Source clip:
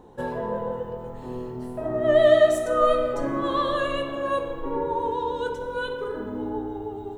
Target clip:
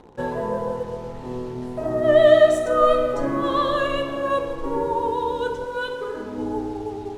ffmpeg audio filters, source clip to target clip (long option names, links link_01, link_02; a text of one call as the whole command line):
ffmpeg -i in.wav -filter_complex "[0:a]asettb=1/sr,asplit=3[link_01][link_02][link_03];[link_01]atrim=end=5.644[link_04];[link_02]atrim=start=5.64:end=6.38,asetpts=PTS-STARTPTS,afade=type=in:duration=0.004:curve=qsin,afade=type=out:start_time=0.736:duration=0.004:curve=qsin,lowshelf=frequency=300:gain=-7[link_05];[link_03]atrim=start=6.376[link_06];[link_04][link_05]acrossfade=duration=0.004:curve1=hsin:curve2=qsin[link_07];[link_07][link_06]acrossfade=duration=0.004:curve1=qsin:curve2=hsin,asplit=2[link_08][link_09];[link_09]acrusher=bits=6:mix=0:aa=0.000001,volume=-7.5dB[link_10];[link_08][link_10]amix=inputs=2:normalize=0,adynamicsmooth=sensitivity=8:basefreq=7700" -ar 48000 -c:a libopus -b:a 64k out.opus